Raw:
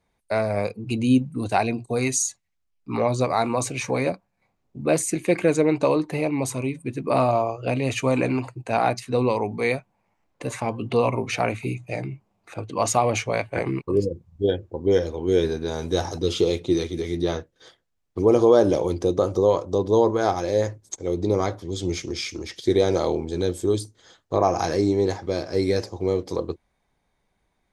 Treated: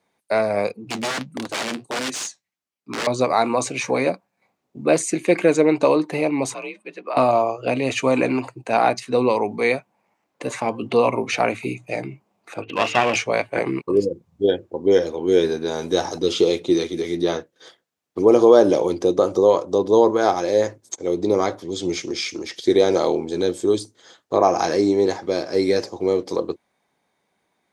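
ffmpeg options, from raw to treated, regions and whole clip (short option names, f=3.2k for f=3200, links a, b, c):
-filter_complex "[0:a]asettb=1/sr,asplit=3[a][b][c];[a]atrim=end=0.724[d];[b]atrim=start=0.72:end=3.07,asetpts=PTS-STARTPTS,afade=t=in:d=0.004:c=qsin,afade=t=out:st=2.346:d=0.004:c=qsin,aeval=exprs='(mod(8.91*val(0)+1,2)-1)/8.91':c=same,flanger=delay=3.2:depth=9.8:regen=-55:speed=1.5:shape=sinusoidal[e];[c]atrim=start=3.066[f];[d][e]acrossfade=d=0.004:c1=hsin:c2=qsin[g];[g][f]acrossfade=d=0.004:c1=qsin:c2=hsin,asettb=1/sr,asplit=3[h][i][j];[h]atrim=end=6.544[k];[i]atrim=start=6.54:end=7.17,asetpts=PTS-STARTPTS,afade=t=in:d=0.004:c=qsin,afade=t=out:st=0.626:d=0.004:c=qsin,afreqshift=48,acrossover=split=540 5100:gain=0.1 1 0.0708[l][m][n];[l][m][n]amix=inputs=3:normalize=0,acompressor=threshold=-28dB:ratio=3:attack=3.2:release=140:knee=1:detection=peak[o];[j]atrim=start=7.166[p];[k][o]acrossfade=d=0.004:c1=hsin:c2=qsin[q];[q][p]acrossfade=d=0.004:c1=qsin:c2=hsin,asettb=1/sr,asplit=3[r][s][t];[r]atrim=end=12.624[u];[s]atrim=start=12.62:end=13.16,asetpts=PTS-STARTPTS,afade=t=in:d=0.004:c=qsin,afade=t=out:st=0.536:d=0.004:c=qsin,lowpass=f=2.7k:t=q:w=8.6,bandreject=f=50:t=h:w=6,bandreject=f=100:t=h:w=6,bandreject=f=150:t=h:w=6,bandreject=f=200:t=h:w=6,bandreject=f=250:t=h:w=6,bandreject=f=300:t=h:w=6,bandreject=f=350:t=h:w=6,bandreject=f=400:t=h:w=6,bandreject=f=450:t=h:w=6,bandreject=f=500:t=h:w=6,aeval=exprs='clip(val(0),-1,0.0473)':c=same[v];[t]atrim=start=13.156[w];[u][v]acrossfade=d=0.004:c1=hsin:c2=qsin[x];[x][w]acrossfade=d=0.004:c1=qsin:c2=hsin,highpass=210,acrossover=split=8900[y][z];[z]acompressor=threshold=-59dB:ratio=4:attack=1:release=60[aa];[y][aa]amix=inputs=2:normalize=0,volume=4dB"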